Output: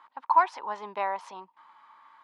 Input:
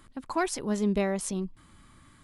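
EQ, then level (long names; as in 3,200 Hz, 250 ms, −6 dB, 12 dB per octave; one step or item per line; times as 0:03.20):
high-pass with resonance 920 Hz, resonance Q 8.6
high-frequency loss of the air 260 metres
0.0 dB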